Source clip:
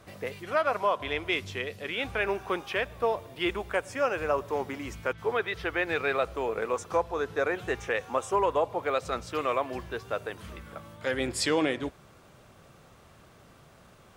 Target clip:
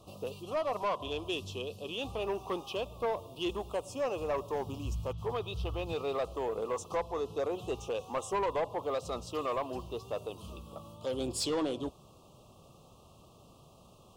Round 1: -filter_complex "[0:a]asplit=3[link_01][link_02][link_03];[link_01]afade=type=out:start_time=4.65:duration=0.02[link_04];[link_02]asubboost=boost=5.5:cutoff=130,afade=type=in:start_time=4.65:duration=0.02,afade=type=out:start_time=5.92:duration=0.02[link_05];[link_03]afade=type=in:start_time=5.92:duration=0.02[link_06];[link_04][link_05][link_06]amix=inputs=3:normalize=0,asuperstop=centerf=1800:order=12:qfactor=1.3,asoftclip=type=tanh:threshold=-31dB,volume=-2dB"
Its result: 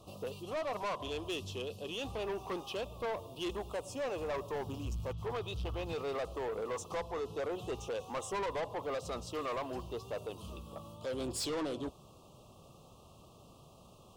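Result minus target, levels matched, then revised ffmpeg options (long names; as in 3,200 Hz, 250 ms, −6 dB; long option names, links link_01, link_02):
soft clipping: distortion +6 dB
-filter_complex "[0:a]asplit=3[link_01][link_02][link_03];[link_01]afade=type=out:start_time=4.65:duration=0.02[link_04];[link_02]asubboost=boost=5.5:cutoff=130,afade=type=in:start_time=4.65:duration=0.02,afade=type=out:start_time=5.92:duration=0.02[link_05];[link_03]afade=type=in:start_time=5.92:duration=0.02[link_06];[link_04][link_05][link_06]amix=inputs=3:normalize=0,asuperstop=centerf=1800:order=12:qfactor=1.3,asoftclip=type=tanh:threshold=-24dB,volume=-2dB"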